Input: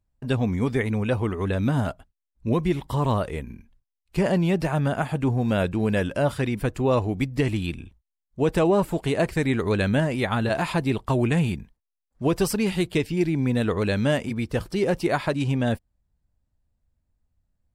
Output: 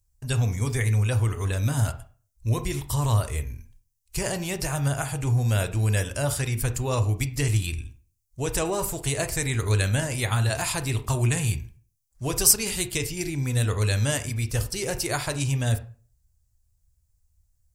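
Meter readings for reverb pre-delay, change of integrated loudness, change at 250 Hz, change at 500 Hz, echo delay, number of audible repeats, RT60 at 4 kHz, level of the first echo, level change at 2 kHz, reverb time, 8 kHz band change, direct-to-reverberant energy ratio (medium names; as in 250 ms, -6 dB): 19 ms, -1.0 dB, -9.0 dB, -7.0 dB, no echo, no echo, 0.30 s, no echo, -1.0 dB, 0.40 s, +15.5 dB, 9.0 dB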